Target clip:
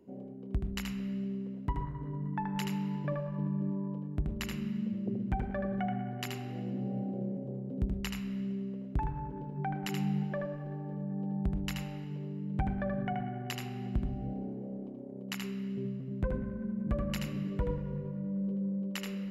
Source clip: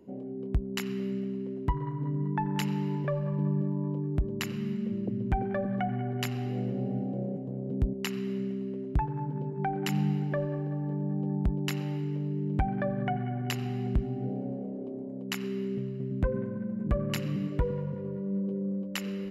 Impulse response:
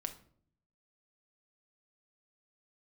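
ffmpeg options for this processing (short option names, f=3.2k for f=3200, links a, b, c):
-filter_complex "[0:a]asplit=2[a][b];[1:a]atrim=start_sample=2205,adelay=78[c];[b][c]afir=irnorm=-1:irlink=0,volume=-3dB[d];[a][d]amix=inputs=2:normalize=0,volume=-5dB"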